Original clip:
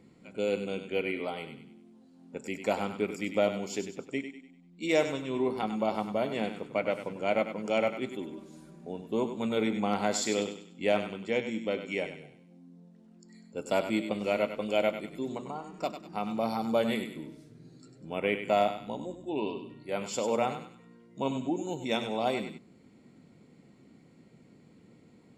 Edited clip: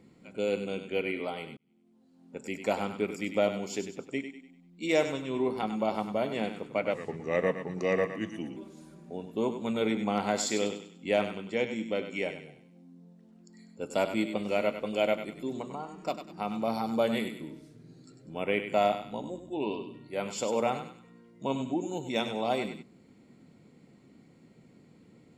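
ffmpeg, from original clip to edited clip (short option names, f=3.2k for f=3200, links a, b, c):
-filter_complex "[0:a]asplit=4[a][b][c][d];[a]atrim=end=1.57,asetpts=PTS-STARTPTS,afade=t=out:st=1.566:d=0.004:c=hsin[e];[b]atrim=start=1.57:end=6.944,asetpts=PTS-STARTPTS,afade=t=in:d=0.94[f];[c]atrim=start=6.94:end=8.32,asetpts=PTS-STARTPTS,asetrate=37485,aresample=44100[g];[d]atrim=start=8.316[h];[e][f]concat=n=2:v=0:a=1[i];[i][g]acrossfade=d=0.004:c1=hsin:c2=hsin[j];[j][h]acrossfade=d=0.004:c1=hsin:c2=hsin"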